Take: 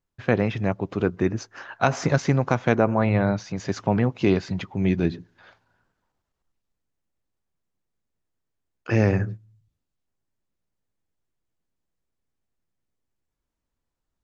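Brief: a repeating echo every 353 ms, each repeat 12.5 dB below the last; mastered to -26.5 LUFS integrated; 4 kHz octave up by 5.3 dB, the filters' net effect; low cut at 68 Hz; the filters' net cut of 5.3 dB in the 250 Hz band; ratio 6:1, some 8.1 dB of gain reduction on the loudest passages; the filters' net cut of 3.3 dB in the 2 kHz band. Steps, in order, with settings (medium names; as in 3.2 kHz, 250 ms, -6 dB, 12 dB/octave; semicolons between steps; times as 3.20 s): high-pass 68 Hz; peaking EQ 250 Hz -7.5 dB; peaking EQ 2 kHz -6.5 dB; peaking EQ 4 kHz +8.5 dB; compression 6:1, threshold -25 dBFS; feedback delay 353 ms, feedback 24%, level -12.5 dB; trim +5 dB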